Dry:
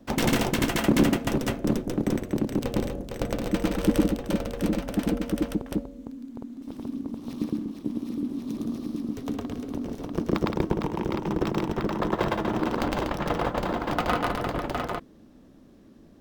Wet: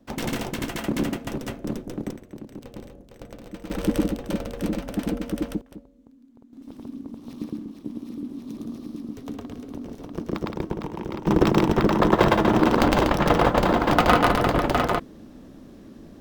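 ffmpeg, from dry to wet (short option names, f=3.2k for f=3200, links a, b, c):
-af "asetnsamples=n=441:p=0,asendcmd='2.11 volume volume -13dB;3.7 volume volume -1dB;5.61 volume volume -14dB;6.53 volume volume -3.5dB;11.27 volume volume 8dB',volume=-5dB"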